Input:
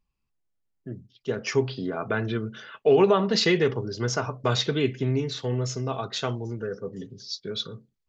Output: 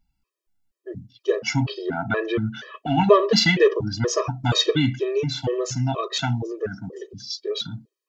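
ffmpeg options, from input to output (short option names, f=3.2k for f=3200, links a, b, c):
-af "acontrast=51,afftfilt=real='re*gt(sin(2*PI*2.1*pts/sr)*(1-2*mod(floor(b*sr/1024/330),2)),0)':imag='im*gt(sin(2*PI*2.1*pts/sr)*(1-2*mod(floor(b*sr/1024/330),2)),0)':win_size=1024:overlap=0.75,volume=2dB"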